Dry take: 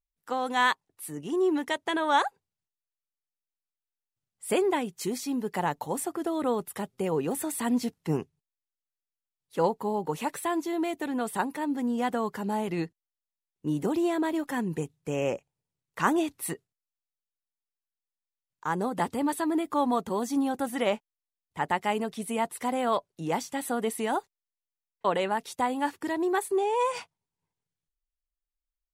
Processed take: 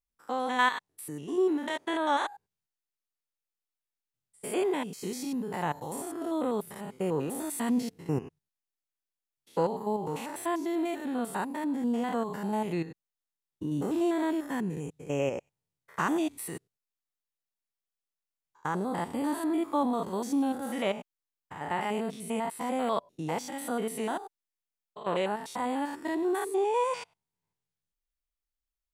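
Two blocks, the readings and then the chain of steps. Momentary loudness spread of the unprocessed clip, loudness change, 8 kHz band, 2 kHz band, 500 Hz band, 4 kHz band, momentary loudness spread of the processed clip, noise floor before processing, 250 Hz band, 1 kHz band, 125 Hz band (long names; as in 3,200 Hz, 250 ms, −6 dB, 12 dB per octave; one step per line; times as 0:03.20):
8 LU, −2.0 dB, −3.5 dB, −3.0 dB, −2.0 dB, −3.5 dB, 10 LU, below −85 dBFS, −1.5 dB, −3.0 dB, −1.0 dB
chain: spectrum averaged block by block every 100 ms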